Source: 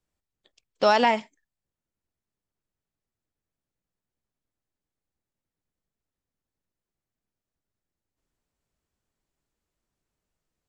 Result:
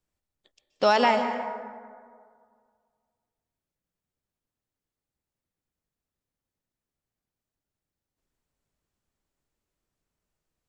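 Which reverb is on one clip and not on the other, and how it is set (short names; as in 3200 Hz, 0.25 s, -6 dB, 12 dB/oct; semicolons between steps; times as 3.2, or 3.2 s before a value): plate-style reverb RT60 2 s, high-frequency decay 0.4×, pre-delay 0.115 s, DRR 7 dB; gain -1 dB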